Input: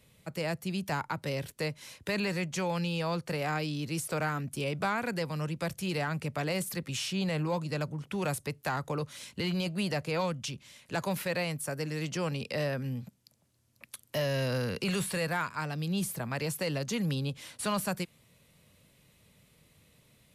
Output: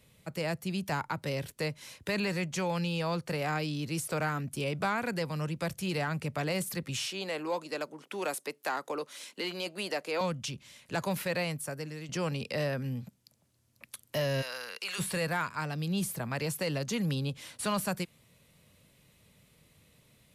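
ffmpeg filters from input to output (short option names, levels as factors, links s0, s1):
-filter_complex "[0:a]asettb=1/sr,asplit=3[s0][s1][s2];[s0]atrim=end=7.064[s3];[s1]atrim=start=7.06:end=10.21,asetpts=PTS-STARTPTS,afade=t=in:d=0.004:c=qsin,afade=t=out:st=3.146:d=0.004:c=qsin,highpass=f=280:w=0.5412,highpass=f=280:w=1.3066[s4];[s2]atrim=start=10.206[s5];[s3][s4]acrossfade=d=0.004:c1=hsin:c2=qsin[s6];[s6][s5]acrossfade=d=0.004:c1=qsin:c2=hsin,asplit=3[s7][s8][s9];[s7]afade=t=out:st=14.41:d=0.02[s10];[s8]highpass=990,afade=t=in:st=14.41:d=0.02,afade=t=out:st=14.98:d=0.02[s11];[s9]afade=t=in:st=14.98:d=0.02[s12];[s10][s11][s12]amix=inputs=3:normalize=0,asplit=2[s13][s14];[s13]atrim=end=12.09,asetpts=PTS-STARTPTS,afade=t=out:st=11.47:d=0.62:silence=0.316228[s15];[s14]atrim=start=12.09,asetpts=PTS-STARTPTS,afade=t=in:d=0.004:c=hsin:silence=0.316228[s16];[s15][s16]concat=n=2:v=0:a=1"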